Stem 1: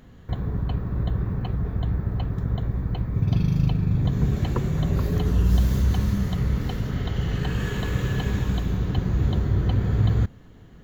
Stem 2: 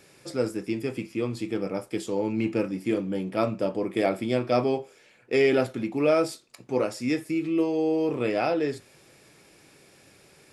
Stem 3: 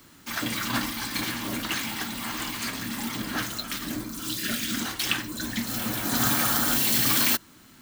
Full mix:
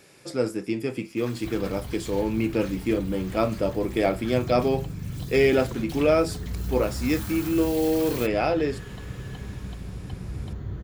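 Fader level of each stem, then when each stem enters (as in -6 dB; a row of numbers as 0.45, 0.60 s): -11.5, +1.5, -15.5 dB; 1.15, 0.00, 0.90 s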